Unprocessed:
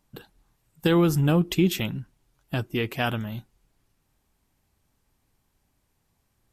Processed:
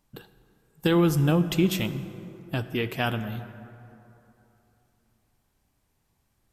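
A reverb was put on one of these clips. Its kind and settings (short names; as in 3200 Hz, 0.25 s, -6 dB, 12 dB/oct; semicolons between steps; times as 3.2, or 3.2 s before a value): plate-style reverb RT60 3.1 s, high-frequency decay 0.45×, DRR 11 dB; gain -1 dB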